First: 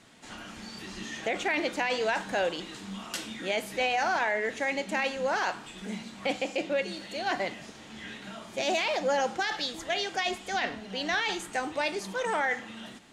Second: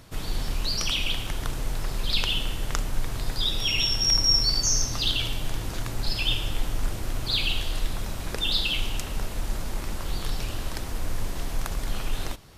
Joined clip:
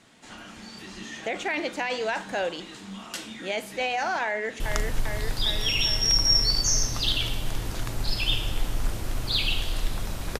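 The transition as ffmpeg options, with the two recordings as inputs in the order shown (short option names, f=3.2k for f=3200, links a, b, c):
-filter_complex "[0:a]apad=whole_dur=10.39,atrim=end=10.39,atrim=end=4.602[a];[1:a]atrim=start=2.588:end=8.38[b];[a][b]acrossfade=d=0.004:c1=hsin:c2=hsin,asplit=2[c][d];[d]afade=t=in:st=4.25:d=0.01,afade=t=out:st=4.6:d=0.01,aecho=0:1:400|800|1200|1600|2000|2400|2800|3200|3600|4000|4400|4800:0.630957|0.44167|0.309169|0.216418|0.151493|0.106045|0.0742315|0.0519621|0.0363734|0.0254614|0.017823|0.0124761[e];[c][e]amix=inputs=2:normalize=0"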